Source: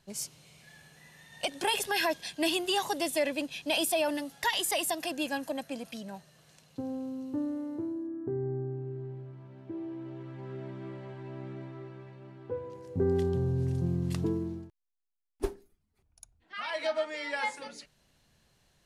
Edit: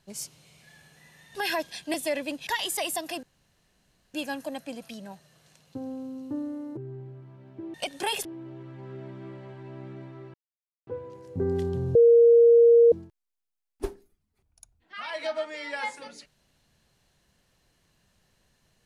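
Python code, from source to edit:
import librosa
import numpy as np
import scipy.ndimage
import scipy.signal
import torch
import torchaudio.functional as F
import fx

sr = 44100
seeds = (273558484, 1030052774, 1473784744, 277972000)

y = fx.edit(x, sr, fx.move(start_s=1.35, length_s=0.51, to_s=9.85),
    fx.cut(start_s=2.45, length_s=0.59),
    fx.cut(start_s=3.57, length_s=0.84),
    fx.insert_room_tone(at_s=5.17, length_s=0.91),
    fx.cut(start_s=7.8, length_s=1.08),
    fx.silence(start_s=11.94, length_s=0.53),
    fx.bleep(start_s=13.55, length_s=0.97, hz=468.0, db=-12.5), tone=tone)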